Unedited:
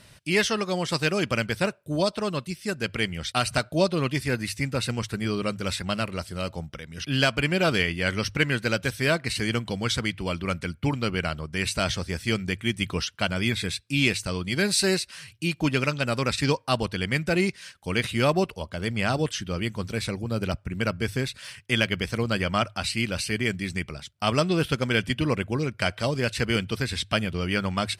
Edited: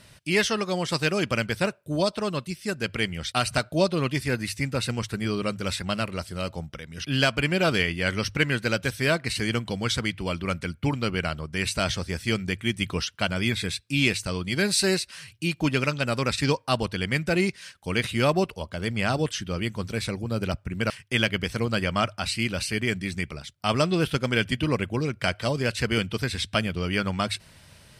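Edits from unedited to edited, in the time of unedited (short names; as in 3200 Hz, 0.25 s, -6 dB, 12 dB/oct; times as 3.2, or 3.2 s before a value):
20.9–21.48 cut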